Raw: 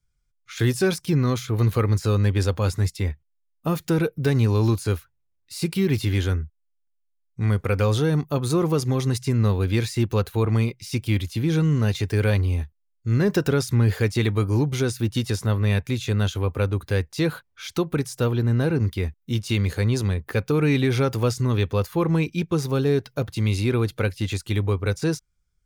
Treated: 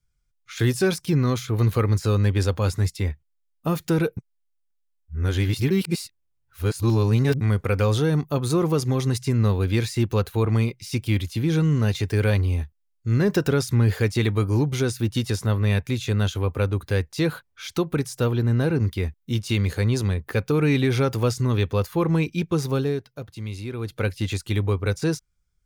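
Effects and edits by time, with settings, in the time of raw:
0:04.17–0:07.41: reverse
0:22.73–0:24.09: duck −10 dB, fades 0.32 s

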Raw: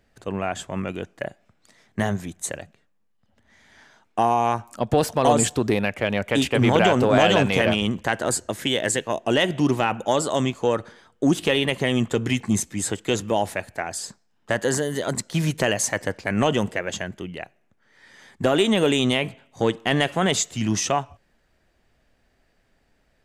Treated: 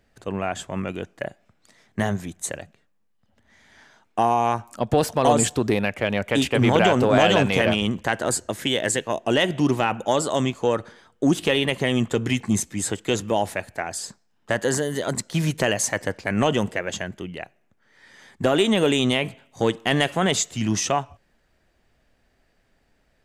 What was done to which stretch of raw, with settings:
0:19.25–0:20.17: high-shelf EQ 5,500 Hz +4.5 dB

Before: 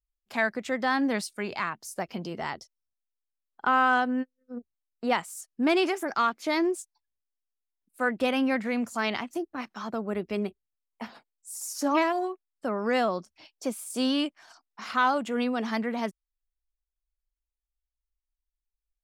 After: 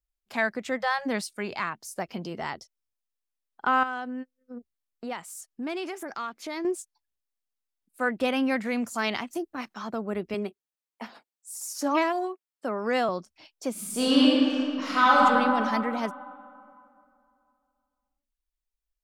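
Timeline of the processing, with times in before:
0:00.78–0:01.06: time-frequency box erased 210–450 Hz
0:03.83–0:06.65: downward compressor 2 to 1, threshold −37 dBFS
0:08.48–0:09.74: high-shelf EQ 5,100 Hz +5.5 dB
0:10.34–0:13.09: high-pass filter 200 Hz
0:13.71–0:15.24: thrown reverb, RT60 2.6 s, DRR −6.5 dB

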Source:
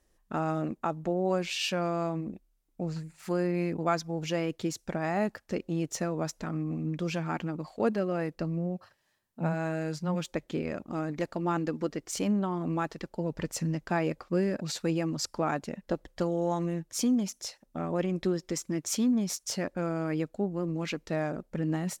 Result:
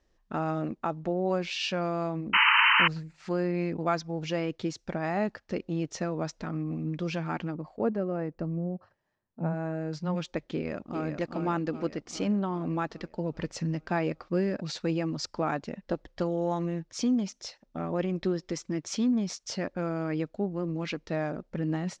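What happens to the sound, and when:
0:02.33–0:02.88: sound drawn into the spectrogram noise 850–3,100 Hz −21 dBFS
0:07.54–0:09.93: parametric band 4,100 Hz −14.5 dB 2.3 octaves
0:10.53–0:11.07: delay throw 400 ms, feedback 60%, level −6.5 dB
whole clip: low-pass filter 5,800 Hz 24 dB per octave

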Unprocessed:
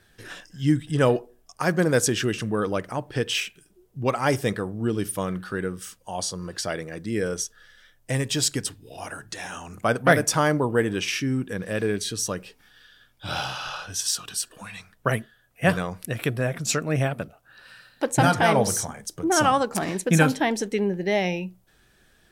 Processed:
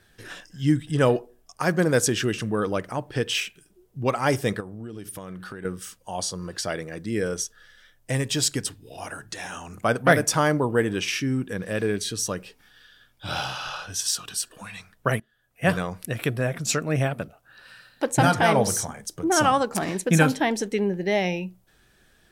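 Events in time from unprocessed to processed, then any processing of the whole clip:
0:04.60–0:05.65: downward compressor 8 to 1, threshold −33 dBFS
0:15.20–0:15.75: fade in, from −20.5 dB

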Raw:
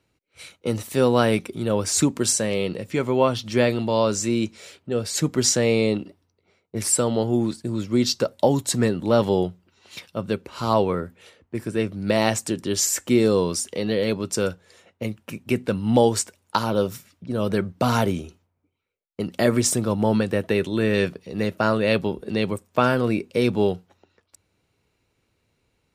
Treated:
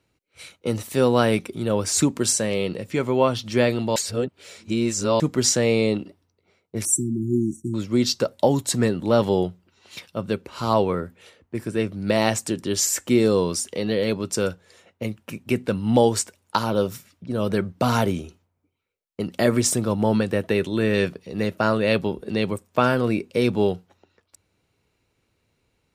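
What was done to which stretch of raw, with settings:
0:03.96–0:05.20: reverse
0:06.85–0:07.74: linear-phase brick-wall band-stop 390–5,600 Hz

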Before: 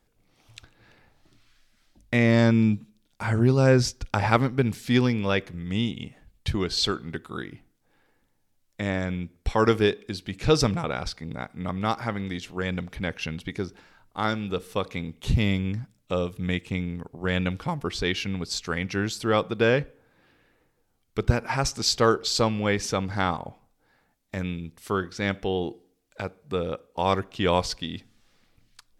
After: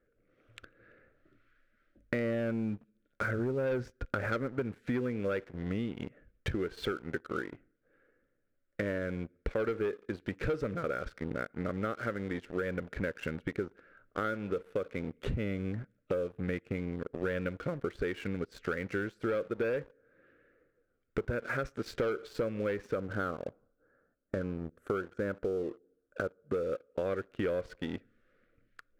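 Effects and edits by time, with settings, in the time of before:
0:22.95–0:26.54: flat-topped bell 3,200 Hz −15 dB
whole clip: drawn EQ curve 170 Hz 0 dB, 550 Hz +12 dB, 880 Hz −15 dB, 1,400 Hz +11 dB, 4,900 Hz −18 dB; leveller curve on the samples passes 2; downward compressor 6 to 1, threshold −27 dBFS; level −5 dB

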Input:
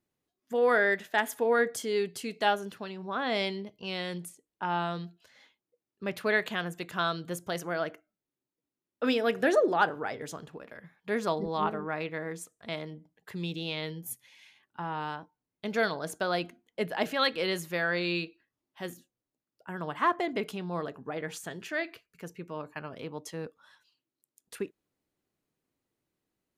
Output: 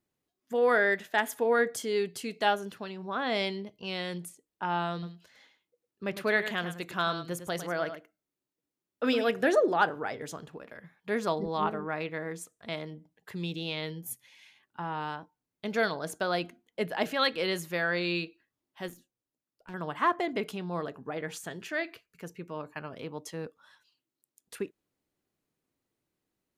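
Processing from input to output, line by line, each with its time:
0:04.92–0:09.30: single-tap delay 105 ms −10.5 dB
0:18.88–0:19.74: tube saturation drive 38 dB, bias 0.65

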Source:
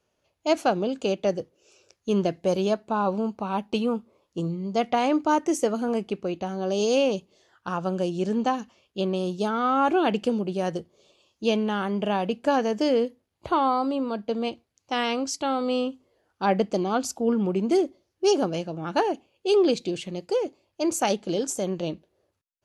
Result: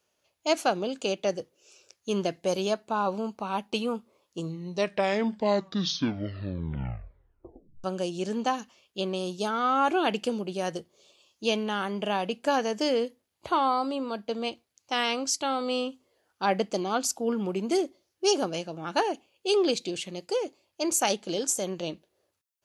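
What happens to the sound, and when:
0:04.38: tape stop 3.46 s
whole clip: spectral tilt +2 dB per octave; level −1.5 dB

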